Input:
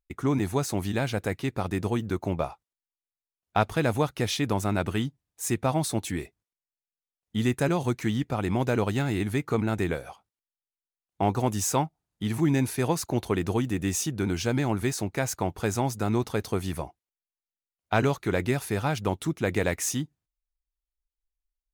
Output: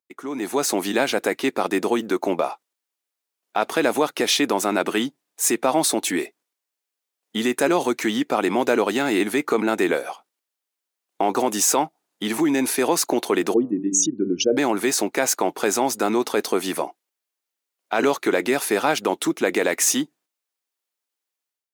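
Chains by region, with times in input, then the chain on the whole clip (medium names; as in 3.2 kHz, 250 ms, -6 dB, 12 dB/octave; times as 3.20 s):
13.54–14.57 s: resonances exaggerated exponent 3 + de-hum 96.25 Hz, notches 18
whole clip: peak limiter -19.5 dBFS; level rider gain up to 12.5 dB; high-pass 270 Hz 24 dB/octave; trim -1 dB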